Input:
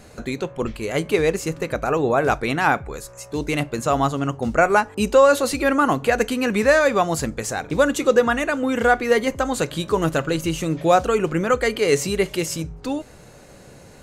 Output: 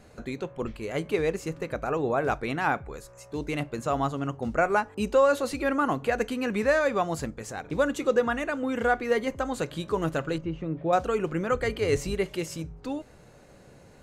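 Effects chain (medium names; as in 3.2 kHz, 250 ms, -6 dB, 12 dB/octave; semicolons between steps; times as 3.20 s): 11.51–12.15 s: octave divider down 2 oct, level -2 dB; treble shelf 4 kHz -6.5 dB; 7.25–7.65 s: transient shaper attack -8 dB, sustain -3 dB; 10.38–10.93 s: tape spacing loss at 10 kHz 40 dB; trim -7 dB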